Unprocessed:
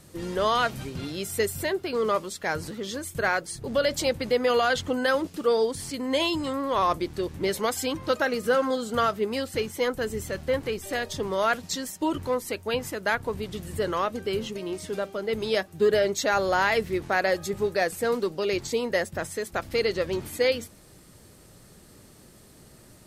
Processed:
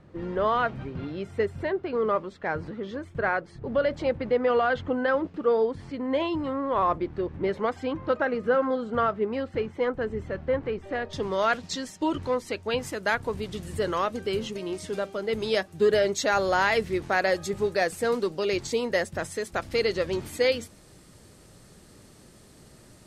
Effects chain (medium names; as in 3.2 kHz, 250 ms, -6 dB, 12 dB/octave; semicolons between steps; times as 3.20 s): low-pass 1.8 kHz 12 dB/octave, from 11.13 s 5.8 kHz, from 12.78 s 9.9 kHz